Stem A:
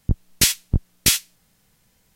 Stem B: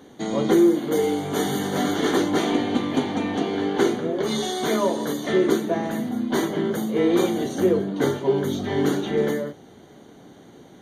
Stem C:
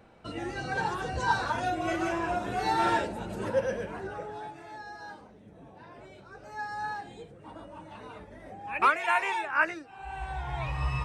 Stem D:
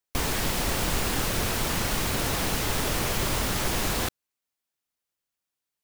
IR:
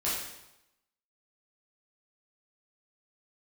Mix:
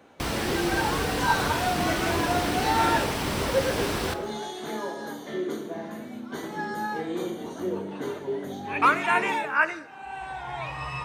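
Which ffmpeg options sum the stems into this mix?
-filter_complex "[1:a]volume=-15dB,asplit=2[link_01][link_02];[link_02]volume=-8.5dB[link_03];[2:a]highpass=frequency=310:poles=1,volume=2.5dB,asplit=2[link_04][link_05];[link_05]volume=-21dB[link_06];[3:a]highshelf=frequency=9900:gain=-12,bandreject=frequency=6800:width=9.5,adelay=50,volume=-2dB,asplit=2[link_07][link_08];[link_08]volume=-17.5dB[link_09];[4:a]atrim=start_sample=2205[link_10];[link_03][link_06][link_09]amix=inputs=3:normalize=0[link_11];[link_11][link_10]afir=irnorm=-1:irlink=0[link_12];[link_01][link_04][link_07][link_12]amix=inputs=4:normalize=0,highpass=56"

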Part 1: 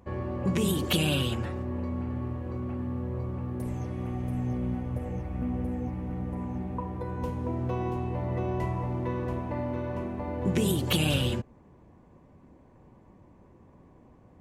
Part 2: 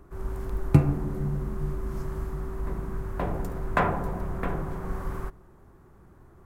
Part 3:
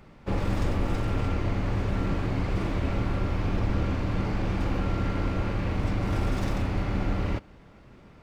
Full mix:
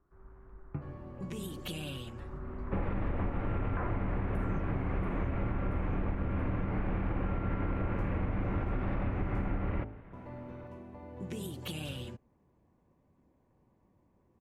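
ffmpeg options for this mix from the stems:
ffmpeg -i stem1.wav -i stem2.wav -i stem3.wav -filter_complex "[0:a]adelay=750,volume=-14dB,asplit=3[link_01][link_02][link_03];[link_01]atrim=end=9.49,asetpts=PTS-STARTPTS,afade=type=out:start_time=9.486:duration=0.004:curve=hsin[link_04];[link_02]atrim=start=9.49:end=10.13,asetpts=PTS-STARTPTS,volume=0[link_05];[link_03]atrim=start=10.13,asetpts=PTS-STARTPTS,afade=type=in:duration=0.004:curve=hsin[link_06];[link_04][link_05][link_06]concat=n=3:v=0:a=1[link_07];[1:a]equalizer=frequency=1300:width_type=o:width=1:gain=4.5,volume=-10dB,afade=type=in:start_time=2.14:duration=0.21:silence=0.266073[link_08];[2:a]bandreject=frequency=53.52:width_type=h:width=4,bandreject=frequency=107.04:width_type=h:width=4,bandreject=frequency=160.56:width_type=h:width=4,bandreject=frequency=214.08:width_type=h:width=4,bandreject=frequency=267.6:width_type=h:width=4,bandreject=frequency=321.12:width_type=h:width=4,bandreject=frequency=374.64:width_type=h:width=4,bandreject=frequency=428.16:width_type=h:width=4,bandreject=frequency=481.68:width_type=h:width=4,bandreject=frequency=535.2:width_type=h:width=4,bandreject=frequency=588.72:width_type=h:width=4,bandreject=frequency=642.24:width_type=h:width=4,bandreject=frequency=695.76:width_type=h:width=4,bandreject=frequency=749.28:width_type=h:width=4,bandreject=frequency=802.8:width_type=h:width=4,bandreject=frequency=856.32:width_type=h:width=4,bandreject=frequency=909.84:width_type=h:width=4,adelay=2450,volume=-0.5dB[link_09];[link_08][link_09]amix=inputs=2:normalize=0,lowpass=frequency=2300:width=0.5412,lowpass=frequency=2300:width=1.3066,alimiter=limit=-19.5dB:level=0:latency=1:release=148,volume=0dB[link_10];[link_07][link_10]amix=inputs=2:normalize=0,acompressor=threshold=-28dB:ratio=6" out.wav

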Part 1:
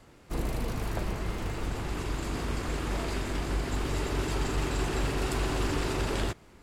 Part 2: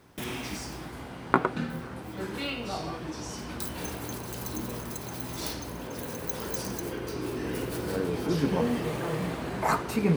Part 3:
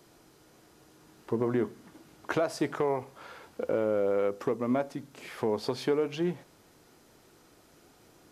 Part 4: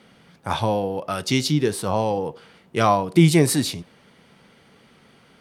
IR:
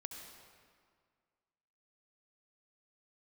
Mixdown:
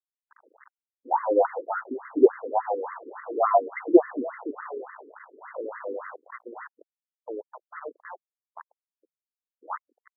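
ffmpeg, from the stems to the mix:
-filter_complex "[0:a]asoftclip=type=tanh:threshold=-31dB,dynaudnorm=framelen=250:gausssize=13:maxgain=5dB,volume=-3.5dB[link_01];[1:a]tremolo=f=87:d=0.333,highpass=frequency=770:width=0.5412,highpass=frequency=770:width=1.3066,volume=-1.5dB[link_02];[2:a]adelay=1850,volume=-4.5dB[link_03];[3:a]bass=frequency=250:gain=-8,treble=frequency=4000:gain=13,aphaser=in_gain=1:out_gain=1:delay=1.5:decay=0.66:speed=1.2:type=sinusoidal,adelay=600,volume=0.5dB[link_04];[link_01][link_02][link_03][link_04]amix=inputs=4:normalize=0,acrusher=bits=4:mix=0:aa=0.000001,afftfilt=real='re*between(b*sr/1024,350*pow(1500/350,0.5+0.5*sin(2*PI*3.5*pts/sr))/1.41,350*pow(1500/350,0.5+0.5*sin(2*PI*3.5*pts/sr))*1.41)':imag='im*between(b*sr/1024,350*pow(1500/350,0.5+0.5*sin(2*PI*3.5*pts/sr))/1.41,350*pow(1500/350,0.5+0.5*sin(2*PI*3.5*pts/sr))*1.41)':win_size=1024:overlap=0.75"

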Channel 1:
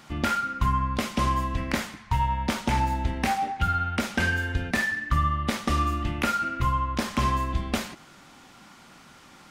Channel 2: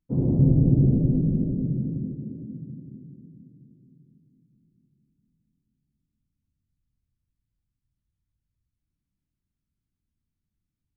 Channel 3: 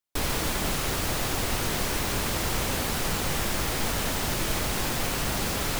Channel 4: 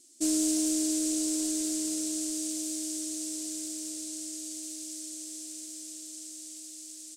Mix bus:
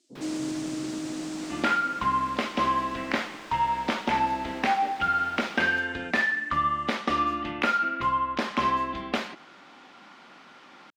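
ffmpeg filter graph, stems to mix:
ffmpeg -i stem1.wav -i stem2.wav -i stem3.wav -i stem4.wav -filter_complex "[0:a]adelay=1400,volume=2dB[link_01];[1:a]volume=-13.5dB[link_02];[2:a]volume=-13dB[link_03];[3:a]volume=-1.5dB,afade=type=out:start_time=1.5:duration=0.31:silence=0.354813[link_04];[link_01][link_02][link_03][link_04]amix=inputs=4:normalize=0,acrossover=split=220 4700:gain=0.0794 1 0.1[link_05][link_06][link_07];[link_05][link_06][link_07]amix=inputs=3:normalize=0" out.wav

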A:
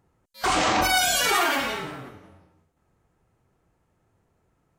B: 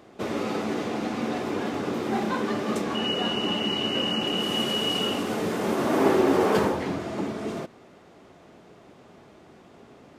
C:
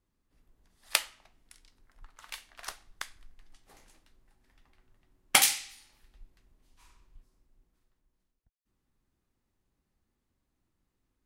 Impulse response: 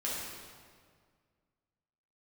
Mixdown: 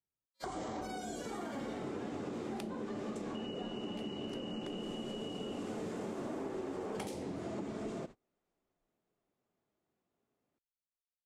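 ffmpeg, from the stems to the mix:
-filter_complex "[0:a]bandreject=frequency=2600:width=5.2,volume=-0.5dB[link_01];[1:a]adelay=400,volume=-0.5dB[link_02];[2:a]adelay=1650,volume=-3dB[link_03];[link_01][link_02]amix=inputs=2:normalize=0,equalizer=frequency=7500:width=2.6:gain=7,acompressor=threshold=-30dB:ratio=6,volume=0dB[link_04];[link_03][link_04]amix=inputs=2:normalize=0,lowpass=9900,agate=range=-34dB:threshold=-42dB:ratio=16:detection=peak,acrossover=split=97|720[link_05][link_06][link_07];[link_05]acompressor=threshold=-59dB:ratio=4[link_08];[link_06]acompressor=threshold=-39dB:ratio=4[link_09];[link_07]acompressor=threshold=-53dB:ratio=4[link_10];[link_08][link_09][link_10]amix=inputs=3:normalize=0"

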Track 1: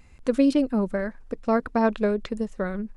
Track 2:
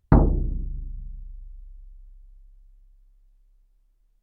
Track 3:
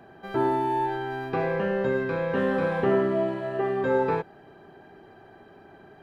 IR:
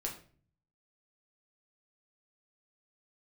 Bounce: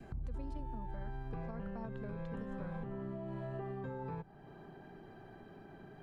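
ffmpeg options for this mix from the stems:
-filter_complex "[0:a]volume=-8.5dB[link_01];[1:a]volume=-12.5dB[link_02];[2:a]equalizer=frequency=81:width_type=o:width=0.81:gain=-14,volume=-3.5dB[link_03];[link_02][link_03]amix=inputs=2:normalize=0,bass=frequency=250:gain=12,treble=frequency=4000:gain=2,acompressor=threshold=-27dB:ratio=6,volume=0dB[link_04];[link_01][link_04]amix=inputs=2:normalize=0,adynamicequalizer=threshold=0.00501:dfrequency=930:dqfactor=1.6:tfrequency=930:tqfactor=1.6:attack=5:release=100:ratio=0.375:range=3:mode=boostabove:tftype=bell,acrossover=split=140[link_05][link_06];[link_06]acompressor=threshold=-54dB:ratio=2[link_07];[link_05][link_07]amix=inputs=2:normalize=0,alimiter=level_in=9.5dB:limit=-24dB:level=0:latency=1:release=162,volume=-9.5dB"

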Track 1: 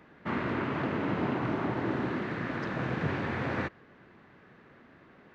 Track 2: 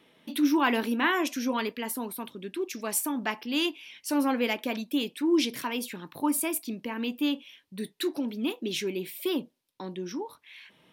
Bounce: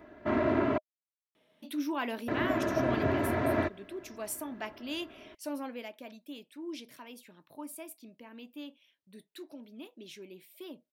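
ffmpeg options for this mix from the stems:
ffmpeg -i stem1.wav -i stem2.wav -filter_complex "[0:a]equalizer=frequency=3300:width=0.32:gain=-6,aecho=1:1:3:0.76,volume=2dB,asplit=3[link_01][link_02][link_03];[link_01]atrim=end=0.78,asetpts=PTS-STARTPTS,afade=type=out:start_time=0.776:duration=0.004:curve=hsin[link_04];[link_02]atrim=start=0.78:end=2.28,asetpts=PTS-STARTPTS,volume=0[link_05];[link_03]atrim=start=2.28,asetpts=PTS-STARTPTS,afade=type=in:duration=0.004:curve=hsin[link_06];[link_04][link_05][link_06]concat=n=3:v=0:a=1[link_07];[1:a]adelay=1350,volume=-10dB,afade=type=out:start_time=5.26:duration=0.62:silence=0.446684[link_08];[link_07][link_08]amix=inputs=2:normalize=0,equalizer=frequency=620:width=6.5:gain=11" out.wav

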